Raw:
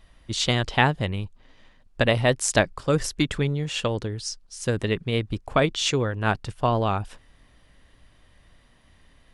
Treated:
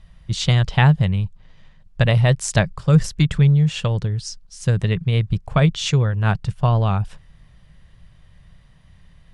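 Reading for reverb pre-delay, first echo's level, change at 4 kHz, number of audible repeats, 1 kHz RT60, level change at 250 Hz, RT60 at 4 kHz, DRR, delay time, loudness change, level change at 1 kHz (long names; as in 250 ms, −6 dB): no reverb audible, no echo audible, 0.0 dB, no echo audible, no reverb audible, +5.5 dB, no reverb audible, no reverb audible, no echo audible, +5.5 dB, −0.5 dB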